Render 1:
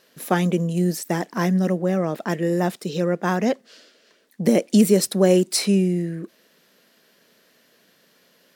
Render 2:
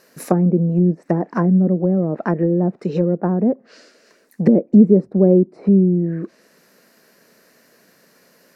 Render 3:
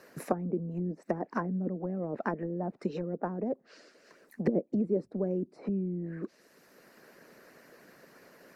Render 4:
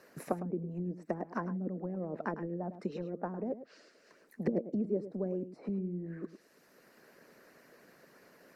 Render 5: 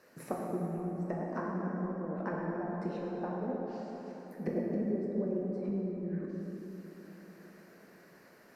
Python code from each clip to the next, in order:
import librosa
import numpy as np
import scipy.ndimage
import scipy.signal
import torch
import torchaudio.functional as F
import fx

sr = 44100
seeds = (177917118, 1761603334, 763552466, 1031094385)

y1 = fx.env_lowpass_down(x, sr, base_hz=420.0, full_db=-18.0)
y1 = fx.peak_eq(y1, sr, hz=3300.0, db=-14.0, octaves=0.45)
y1 = y1 * librosa.db_to_amplitude(6.0)
y2 = fx.hpss(y1, sr, part='harmonic', gain_db=-12)
y2 = fx.band_squash(y2, sr, depth_pct=40)
y2 = y2 * librosa.db_to_amplitude(-7.5)
y3 = y2 + 10.0 ** (-12.5 / 20.0) * np.pad(y2, (int(106 * sr / 1000.0), 0))[:len(y2)]
y3 = y3 * librosa.db_to_amplitude(-4.0)
y4 = fx.rev_plate(y3, sr, seeds[0], rt60_s=4.0, hf_ratio=0.5, predelay_ms=0, drr_db=-3.5)
y4 = y4 * librosa.db_to_amplitude(-3.5)